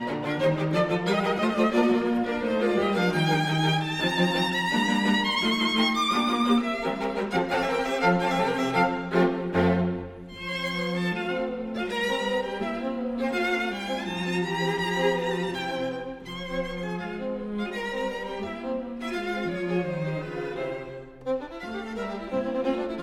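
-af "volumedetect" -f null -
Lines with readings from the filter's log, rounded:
mean_volume: -26.5 dB
max_volume: -8.9 dB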